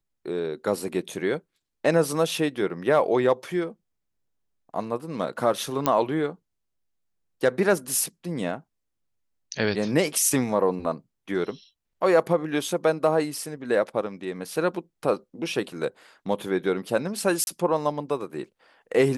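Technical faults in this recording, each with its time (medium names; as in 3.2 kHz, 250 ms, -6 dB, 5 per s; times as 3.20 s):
5.86 s: pop -7 dBFS
17.44–17.47 s: dropout 31 ms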